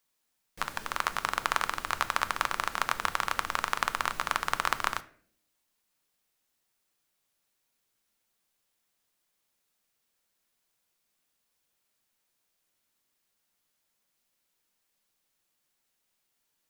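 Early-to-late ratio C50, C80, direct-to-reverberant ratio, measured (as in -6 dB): 18.0 dB, 21.5 dB, 11.5 dB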